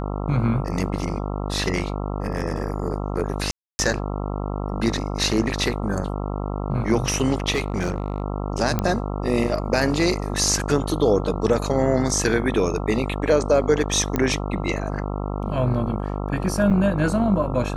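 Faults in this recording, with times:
mains buzz 50 Hz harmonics 27 −27 dBFS
0:03.51–0:03.79: drop-out 280 ms
0:07.55–0:08.22: clipping −18 dBFS
0:08.79: click −9 dBFS
0:14.16: click −9 dBFS
0:16.70–0:16.71: drop-out 7.8 ms

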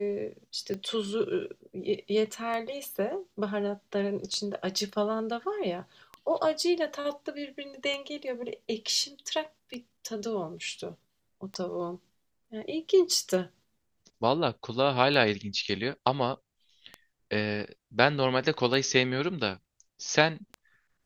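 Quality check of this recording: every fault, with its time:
scratch tick 33 1/3 rpm −23 dBFS

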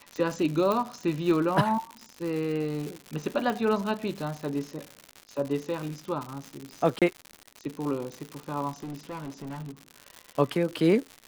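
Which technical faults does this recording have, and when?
surface crackle 160 per second −32 dBFS
0:00.72: click −15 dBFS
0:03.50: click −18 dBFS
0:06.99–0:07.02: drop-out 27 ms
0:08.76–0:09.82: clipping −33.5 dBFS

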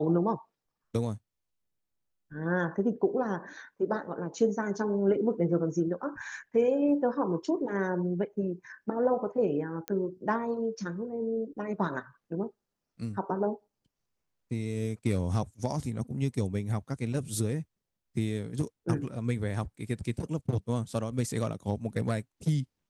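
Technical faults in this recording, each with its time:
0:09.88: click −16 dBFS

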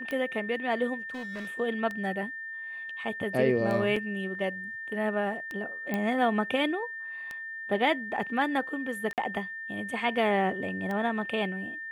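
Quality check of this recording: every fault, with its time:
scratch tick 33 1/3 rpm −22 dBFS
whistle 1,800 Hz −36 dBFS
0:01.10–0:01.60: clipping −33.5 dBFS
0:03.96: drop-out 4.2 ms
0:05.94: click −17 dBFS
0:09.13–0:09.18: drop-out 48 ms

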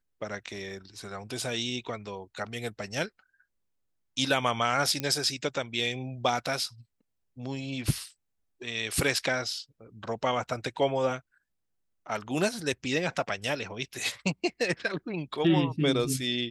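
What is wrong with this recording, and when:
0:05.00: click −14 dBFS

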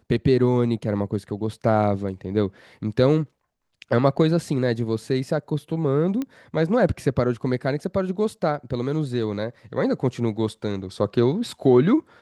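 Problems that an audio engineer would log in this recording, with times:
0:06.22: click −16 dBFS

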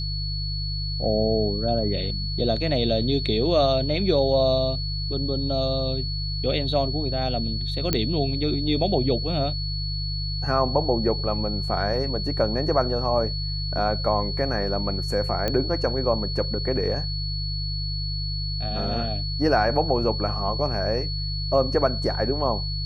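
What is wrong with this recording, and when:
mains hum 50 Hz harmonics 3 −29 dBFS
whistle 4,400 Hz −31 dBFS
0:07.93: click −7 dBFS
0:15.48: click −11 dBFS

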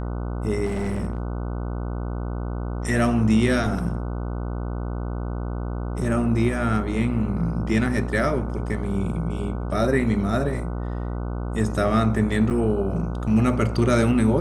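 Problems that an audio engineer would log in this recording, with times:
mains buzz 60 Hz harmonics 25 −28 dBFS
0:00.65–0:02.22: clipping −22 dBFS
0:12.50–0:12.51: drop-out 8.2 ms

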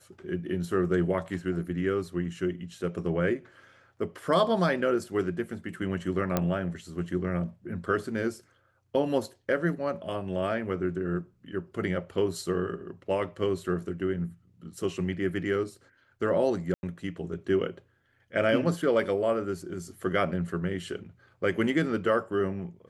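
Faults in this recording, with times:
0:06.37: click −11 dBFS
0:16.74–0:16.83: drop-out 91 ms

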